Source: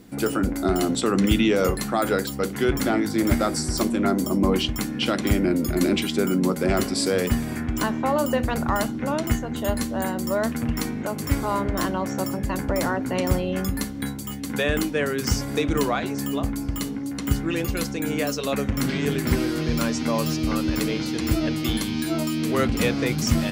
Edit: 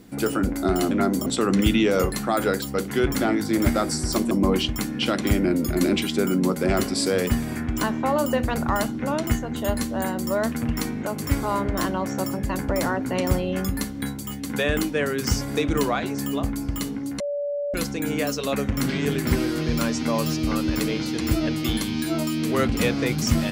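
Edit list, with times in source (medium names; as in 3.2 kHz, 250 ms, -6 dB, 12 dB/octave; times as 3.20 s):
3.96–4.31 s: move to 0.91 s
17.20–17.74 s: bleep 576 Hz -24 dBFS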